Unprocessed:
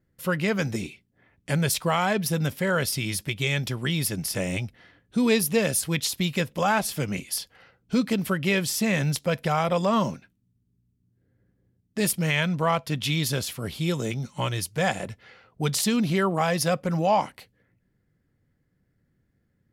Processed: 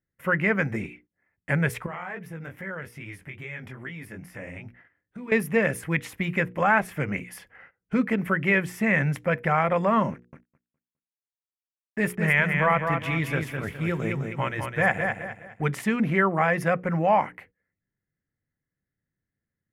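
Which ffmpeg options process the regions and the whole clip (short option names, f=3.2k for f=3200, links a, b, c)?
-filter_complex "[0:a]asettb=1/sr,asplit=3[a][b][c];[a]atrim=end=1.864[d];[b]atrim=start=1.86:end=5.32,asetpts=PTS-STARTPTS,afade=t=in:d=0.004:c=qsin,afade=t=out:st=3.456:d=0.004:c=qsin,flanger=delay=16:depth=6.8:speed=2.4,acompressor=threshold=-37dB:ratio=3:attack=3.2:release=140:knee=1:detection=peak[e];[c]atrim=start=5.316[f];[d][e]acrossfade=d=0.004:c1=hsin:c2=qsin[g];[g][f]acrossfade=d=0.004:c1=qsin:c2=hsin,asettb=1/sr,asplit=3[h][i][j];[h]atrim=end=10.124[k];[i]atrim=start=10.12:end=15.64,asetpts=PTS-STARTPTS,afade=t=in:d=0.004:c=qsin,afade=t=out:st=5.516:d=0.004:c=qsin,aeval=exprs='sgn(val(0))*max(abs(val(0))-0.00422,0)':c=same,aecho=1:1:207|414|621|828:0.531|0.175|0.0578|0.0191,atrim=end_sample=243432[l];[j]atrim=start=15.636[m];[k][l]acrossfade=d=0.004:c1=hsin:c2=qsin[n];[n][m]acrossfade=d=0.004:c1=qsin:c2=hsin,bandreject=f=60:t=h:w=6,bandreject=f=120:t=h:w=6,bandreject=f=180:t=h:w=6,bandreject=f=240:t=h:w=6,bandreject=f=300:t=h:w=6,bandreject=f=360:t=h:w=6,bandreject=f=420:t=h:w=6,bandreject=f=480:t=h:w=6,agate=range=-16dB:threshold=-53dB:ratio=16:detection=peak,highshelf=f=2.9k:t=q:w=3:g=-13.5"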